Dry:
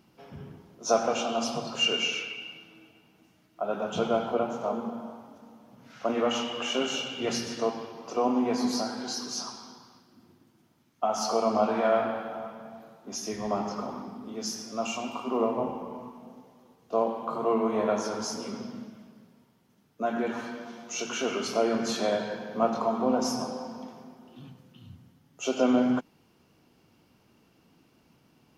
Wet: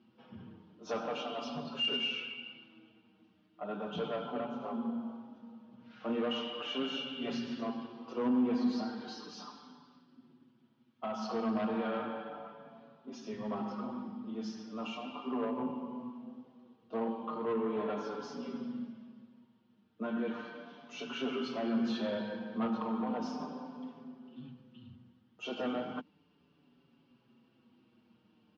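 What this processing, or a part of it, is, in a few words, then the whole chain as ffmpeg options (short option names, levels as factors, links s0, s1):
barber-pole flanger into a guitar amplifier: -filter_complex "[0:a]asplit=2[s0][s1];[s1]adelay=5.8,afreqshift=-0.36[s2];[s0][s2]amix=inputs=2:normalize=1,asoftclip=type=tanh:threshold=0.0562,highpass=98,equalizer=f=240:t=q:w=4:g=7,equalizer=f=680:t=q:w=4:g=-5,equalizer=f=2100:t=q:w=4:g=-5,equalizer=f=3100:t=q:w=4:g=3,lowpass=f=4000:w=0.5412,lowpass=f=4000:w=1.3066,volume=0.708"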